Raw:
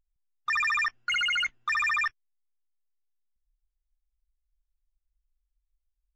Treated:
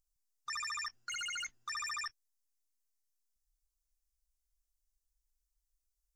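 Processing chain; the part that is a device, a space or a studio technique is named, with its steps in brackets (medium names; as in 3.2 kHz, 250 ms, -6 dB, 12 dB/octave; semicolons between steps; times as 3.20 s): over-bright horn tweeter (resonant high shelf 4.1 kHz +12.5 dB, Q 1.5; peak limiter -27 dBFS, peak gain reduction 9 dB); trim -6.5 dB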